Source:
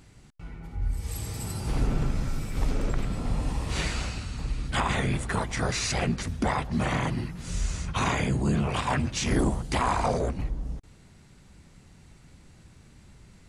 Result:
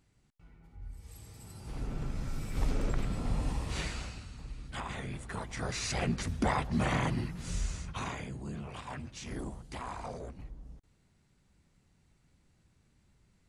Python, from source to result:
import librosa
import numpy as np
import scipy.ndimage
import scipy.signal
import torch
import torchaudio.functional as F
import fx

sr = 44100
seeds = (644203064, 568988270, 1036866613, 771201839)

y = fx.gain(x, sr, db=fx.line((1.42, -16.5), (2.58, -4.0), (3.5, -4.0), (4.43, -13.0), (5.14, -13.0), (6.26, -3.0), (7.48, -3.0), (8.31, -15.5)))